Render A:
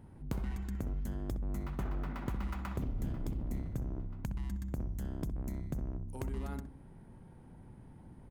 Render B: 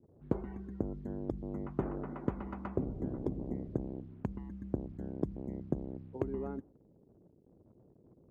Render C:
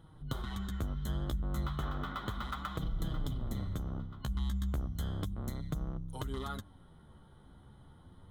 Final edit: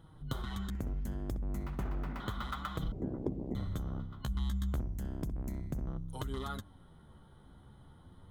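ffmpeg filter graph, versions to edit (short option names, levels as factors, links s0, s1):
-filter_complex "[0:a]asplit=2[s0][s1];[2:a]asplit=4[s2][s3][s4][s5];[s2]atrim=end=0.702[s6];[s0]atrim=start=0.698:end=2.202[s7];[s3]atrim=start=2.198:end=2.922[s8];[1:a]atrim=start=2.918:end=3.552[s9];[s4]atrim=start=3.548:end=4.802[s10];[s1]atrim=start=4.798:end=5.872[s11];[s5]atrim=start=5.868[s12];[s6][s7]acrossfade=d=0.004:c1=hsin:c2=hsin[s13];[s13][s8]acrossfade=d=0.004:c1=hsin:c2=hsin[s14];[s14][s9]acrossfade=d=0.004:c1=hsin:c2=hsin[s15];[s15][s10]acrossfade=d=0.004:c1=hsin:c2=hsin[s16];[s16][s11]acrossfade=d=0.004:c1=hsin:c2=hsin[s17];[s17][s12]acrossfade=d=0.004:c1=hsin:c2=hsin"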